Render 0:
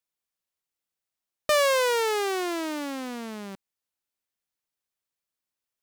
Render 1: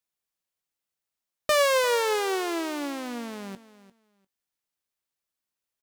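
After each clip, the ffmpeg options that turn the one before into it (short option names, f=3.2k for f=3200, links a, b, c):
-filter_complex "[0:a]asplit=2[a][b];[b]adelay=21,volume=-13.5dB[c];[a][c]amix=inputs=2:normalize=0,aecho=1:1:348|696:0.15|0.0269"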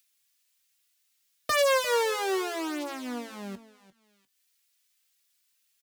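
-filter_complex "[0:a]acrossover=split=100|1800[a][b][c];[c]acompressor=mode=upward:threshold=-54dB:ratio=2.5[d];[a][b][d]amix=inputs=3:normalize=0,asplit=2[e][f];[f]adelay=3.4,afreqshift=1.8[g];[e][g]amix=inputs=2:normalize=1,volume=1dB"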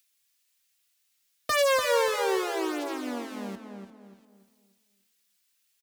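-filter_complex "[0:a]asplit=2[a][b];[b]adelay=292,lowpass=f=1.4k:p=1,volume=-4.5dB,asplit=2[c][d];[d]adelay=292,lowpass=f=1.4k:p=1,volume=0.38,asplit=2[e][f];[f]adelay=292,lowpass=f=1.4k:p=1,volume=0.38,asplit=2[g][h];[h]adelay=292,lowpass=f=1.4k:p=1,volume=0.38,asplit=2[i][j];[j]adelay=292,lowpass=f=1.4k:p=1,volume=0.38[k];[a][c][e][g][i][k]amix=inputs=6:normalize=0"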